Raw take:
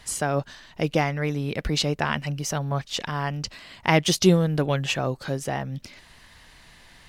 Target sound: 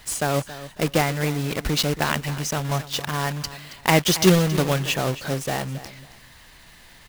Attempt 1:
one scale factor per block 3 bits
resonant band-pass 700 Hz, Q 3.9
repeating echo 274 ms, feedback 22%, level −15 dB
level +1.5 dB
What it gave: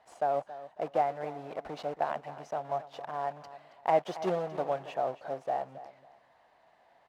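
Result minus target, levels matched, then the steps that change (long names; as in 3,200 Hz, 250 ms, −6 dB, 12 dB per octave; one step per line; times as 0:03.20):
500 Hz band +4.5 dB
remove: resonant band-pass 700 Hz, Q 3.9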